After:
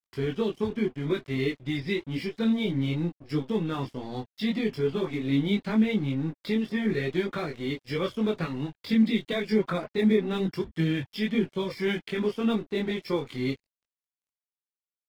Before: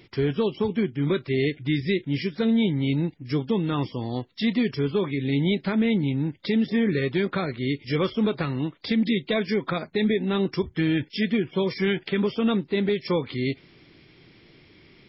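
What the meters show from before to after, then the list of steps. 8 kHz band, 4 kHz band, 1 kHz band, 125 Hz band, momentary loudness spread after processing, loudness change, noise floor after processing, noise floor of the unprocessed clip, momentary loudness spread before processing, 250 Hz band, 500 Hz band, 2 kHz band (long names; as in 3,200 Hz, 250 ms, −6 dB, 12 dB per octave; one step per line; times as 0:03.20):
can't be measured, −4.0 dB, −3.5 dB, −4.0 dB, 8 LU, −3.0 dB, below −85 dBFS, −55 dBFS, 5 LU, −3.0 dB, −3.0 dB, −3.5 dB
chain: dead-zone distortion −42.5 dBFS
multi-voice chorus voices 6, 0.84 Hz, delay 21 ms, depth 2.6 ms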